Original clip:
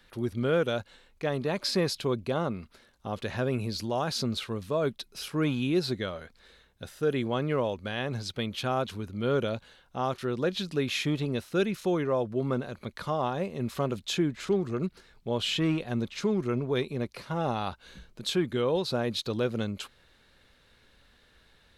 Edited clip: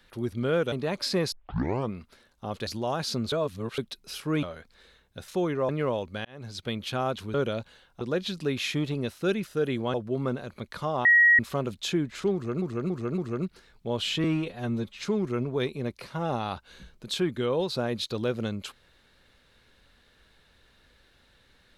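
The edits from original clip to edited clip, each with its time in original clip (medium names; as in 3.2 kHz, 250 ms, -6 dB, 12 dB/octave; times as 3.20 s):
0.72–1.34 s: delete
1.94 s: tape start 0.60 s
3.29–3.75 s: delete
4.40–4.86 s: reverse
5.51–6.08 s: delete
6.93–7.40 s: swap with 11.78–12.19 s
7.96–8.38 s: fade in
9.05–9.30 s: delete
9.97–10.32 s: delete
13.30–13.64 s: bleep 1.9 kHz -14.5 dBFS
14.59–14.87 s: loop, 4 plays
15.65–16.16 s: stretch 1.5×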